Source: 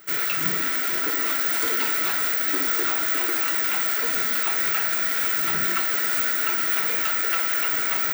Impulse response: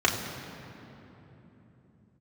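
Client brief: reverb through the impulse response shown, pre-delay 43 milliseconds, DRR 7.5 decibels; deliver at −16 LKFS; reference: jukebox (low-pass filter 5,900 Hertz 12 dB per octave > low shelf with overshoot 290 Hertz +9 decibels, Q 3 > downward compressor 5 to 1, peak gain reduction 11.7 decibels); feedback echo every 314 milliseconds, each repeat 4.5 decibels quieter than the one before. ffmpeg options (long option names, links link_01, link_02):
-filter_complex "[0:a]aecho=1:1:314|628|942|1256|1570|1884|2198|2512|2826:0.596|0.357|0.214|0.129|0.0772|0.0463|0.0278|0.0167|0.01,asplit=2[link_01][link_02];[1:a]atrim=start_sample=2205,adelay=43[link_03];[link_02][link_03]afir=irnorm=-1:irlink=0,volume=-22.5dB[link_04];[link_01][link_04]amix=inputs=2:normalize=0,lowpass=5900,lowshelf=frequency=290:width_type=q:width=3:gain=9,acompressor=threshold=-30dB:ratio=5,volume=15.5dB"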